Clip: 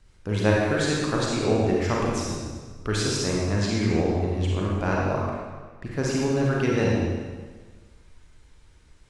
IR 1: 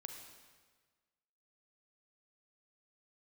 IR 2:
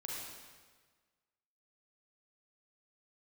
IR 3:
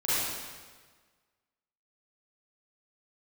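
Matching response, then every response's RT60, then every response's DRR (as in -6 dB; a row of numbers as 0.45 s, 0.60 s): 2; 1.5 s, 1.5 s, 1.5 s; 3.5 dB, -4.0 dB, -12.5 dB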